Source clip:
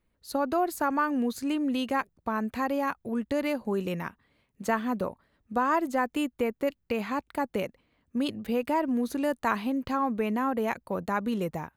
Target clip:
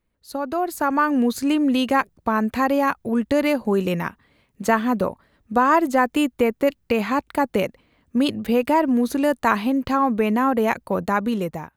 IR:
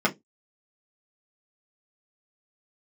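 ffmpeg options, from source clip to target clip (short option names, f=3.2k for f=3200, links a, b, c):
-af "dynaudnorm=f=240:g=7:m=9dB"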